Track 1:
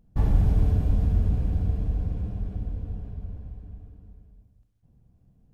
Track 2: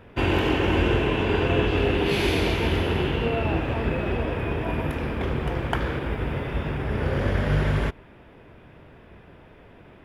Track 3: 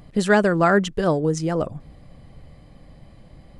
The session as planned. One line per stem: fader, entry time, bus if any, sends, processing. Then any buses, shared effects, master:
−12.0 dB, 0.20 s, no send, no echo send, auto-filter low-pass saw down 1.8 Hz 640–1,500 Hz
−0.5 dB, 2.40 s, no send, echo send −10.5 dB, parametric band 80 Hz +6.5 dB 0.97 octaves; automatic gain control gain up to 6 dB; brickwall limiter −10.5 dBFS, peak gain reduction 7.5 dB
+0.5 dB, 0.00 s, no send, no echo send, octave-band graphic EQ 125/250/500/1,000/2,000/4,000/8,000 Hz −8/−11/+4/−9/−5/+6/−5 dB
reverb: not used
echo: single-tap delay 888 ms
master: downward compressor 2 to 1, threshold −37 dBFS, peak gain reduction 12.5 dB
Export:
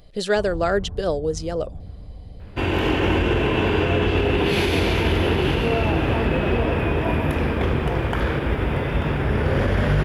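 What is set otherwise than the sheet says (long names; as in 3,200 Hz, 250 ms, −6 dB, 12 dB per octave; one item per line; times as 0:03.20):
stem 2: missing parametric band 80 Hz +6.5 dB 0.97 octaves
master: missing downward compressor 2 to 1, threshold −37 dBFS, peak gain reduction 12.5 dB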